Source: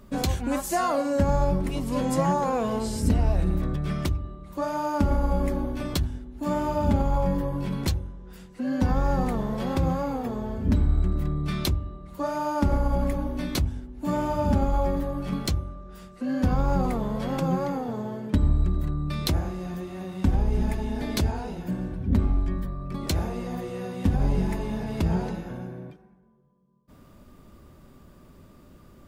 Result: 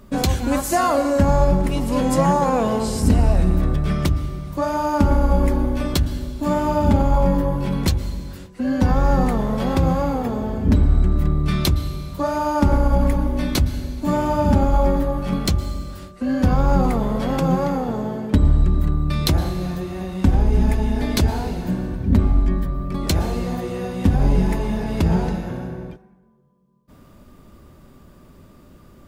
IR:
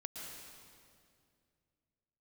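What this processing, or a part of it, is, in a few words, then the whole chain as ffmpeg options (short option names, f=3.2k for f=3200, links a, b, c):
keyed gated reverb: -filter_complex "[0:a]asplit=3[a][b][c];[1:a]atrim=start_sample=2205[d];[b][d]afir=irnorm=-1:irlink=0[e];[c]apad=whole_len=1282354[f];[e][f]sidechaingate=range=-33dB:threshold=-44dB:ratio=16:detection=peak,volume=-5.5dB[g];[a][g]amix=inputs=2:normalize=0,volume=4dB"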